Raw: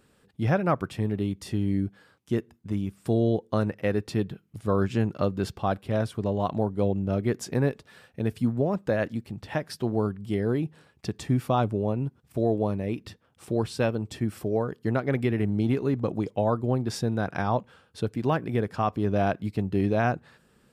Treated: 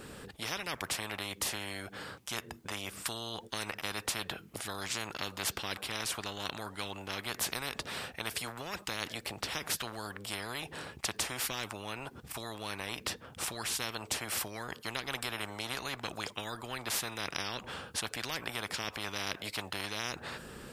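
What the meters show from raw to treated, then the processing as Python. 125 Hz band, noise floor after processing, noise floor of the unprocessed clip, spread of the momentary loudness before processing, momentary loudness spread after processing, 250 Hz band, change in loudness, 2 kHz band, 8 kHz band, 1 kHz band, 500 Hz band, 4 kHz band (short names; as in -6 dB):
-20.0 dB, -55 dBFS, -64 dBFS, 7 LU, 7 LU, -19.0 dB, -9.0 dB, 0.0 dB, +10.0 dB, -9.0 dB, -16.5 dB, +8.5 dB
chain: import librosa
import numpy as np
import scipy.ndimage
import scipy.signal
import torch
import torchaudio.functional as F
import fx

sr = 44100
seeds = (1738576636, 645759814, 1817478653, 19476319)

y = fx.spectral_comp(x, sr, ratio=10.0)
y = y * librosa.db_to_amplitude(-2.0)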